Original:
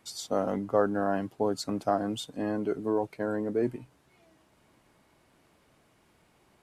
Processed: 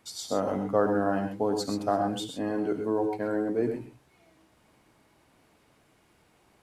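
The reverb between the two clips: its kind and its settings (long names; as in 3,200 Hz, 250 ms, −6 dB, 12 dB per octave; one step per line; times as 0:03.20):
reverb whose tail is shaped and stops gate 150 ms rising, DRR 4.5 dB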